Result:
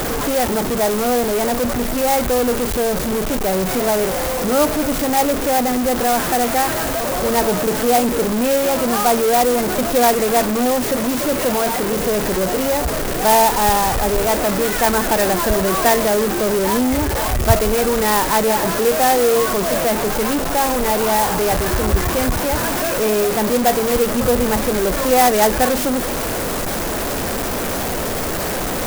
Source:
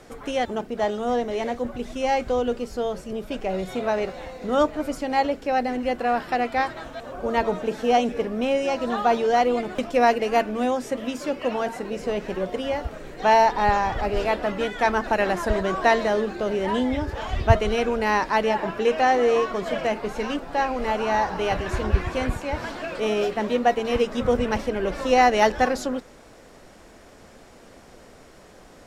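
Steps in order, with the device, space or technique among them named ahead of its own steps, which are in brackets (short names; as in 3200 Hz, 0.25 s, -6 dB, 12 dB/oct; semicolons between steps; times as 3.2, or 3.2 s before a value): early CD player with a faulty converter (zero-crossing step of -17 dBFS; clock jitter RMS 0.078 ms); gain +1 dB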